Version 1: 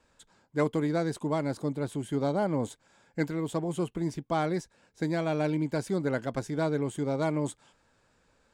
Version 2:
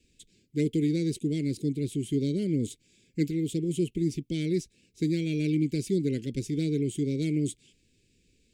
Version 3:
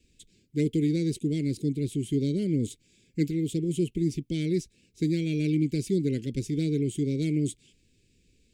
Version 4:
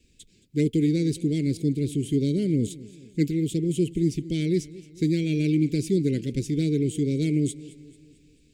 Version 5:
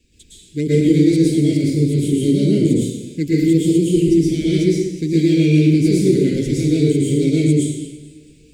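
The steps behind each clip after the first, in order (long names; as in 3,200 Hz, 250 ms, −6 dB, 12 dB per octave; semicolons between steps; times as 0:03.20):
elliptic band-stop filter 390–2,400 Hz, stop band 50 dB; level +4 dB
low-shelf EQ 130 Hz +4 dB
feedback echo with a swinging delay time 221 ms, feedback 50%, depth 55 cents, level −19 dB; level +3 dB
dense smooth reverb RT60 0.93 s, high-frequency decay 0.95×, pre-delay 100 ms, DRR −7.5 dB; level +1.5 dB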